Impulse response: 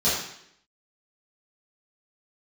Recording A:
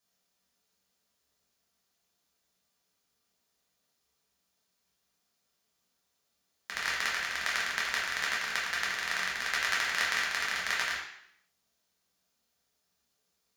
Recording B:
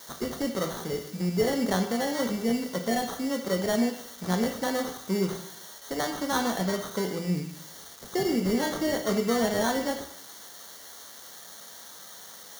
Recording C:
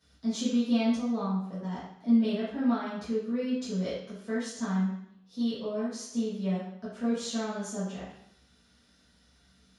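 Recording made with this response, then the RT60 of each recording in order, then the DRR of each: C; 0.70, 0.70, 0.70 s; -6.0, 4.0, -12.0 dB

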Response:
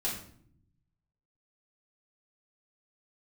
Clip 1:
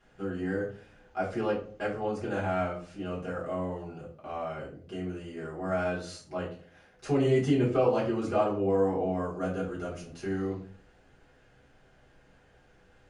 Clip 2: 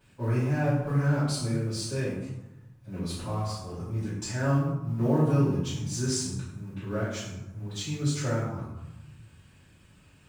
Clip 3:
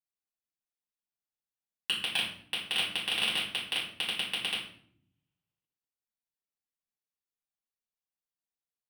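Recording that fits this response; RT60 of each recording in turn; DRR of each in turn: 3; 0.45, 1.0, 0.60 s; -8.5, -12.5, -6.5 dB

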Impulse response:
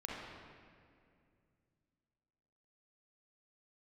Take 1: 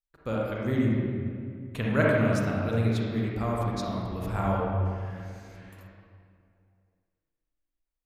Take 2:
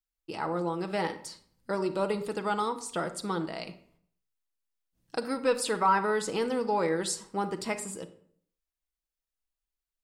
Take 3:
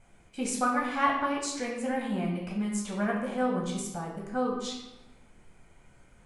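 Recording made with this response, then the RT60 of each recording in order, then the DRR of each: 1; 2.3, 0.60, 1.0 s; -4.5, 6.5, -2.5 dB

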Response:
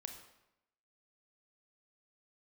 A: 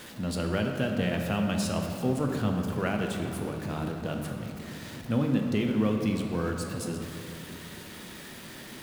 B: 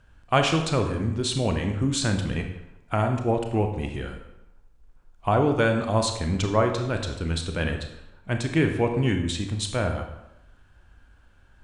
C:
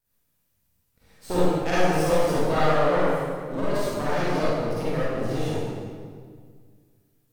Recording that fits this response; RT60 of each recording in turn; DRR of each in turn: B; 3.0, 0.85, 1.9 s; 2.0, 4.5, -10.5 dB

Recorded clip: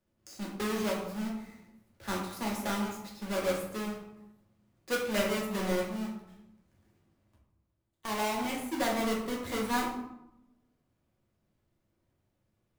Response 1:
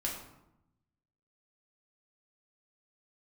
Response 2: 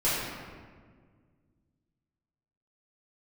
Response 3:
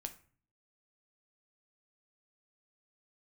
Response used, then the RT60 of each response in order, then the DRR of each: 1; 0.85, 1.7, 0.45 s; -3.0, -11.5, 6.5 dB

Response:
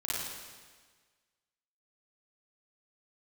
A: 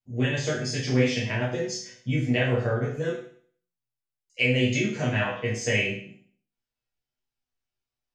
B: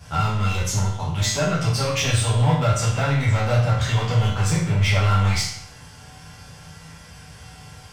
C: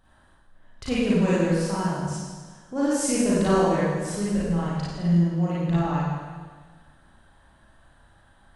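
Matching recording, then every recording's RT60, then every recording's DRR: C; 0.50, 0.70, 1.5 s; -9.5, -10.5, -9.5 dB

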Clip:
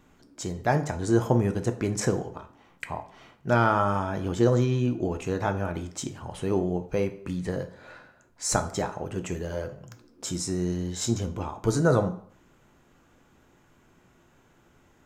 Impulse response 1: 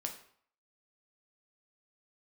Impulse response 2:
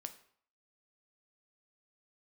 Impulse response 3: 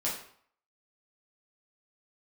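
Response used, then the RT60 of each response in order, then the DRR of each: 2; 0.60, 0.60, 0.60 s; 2.5, 7.5, -7.0 dB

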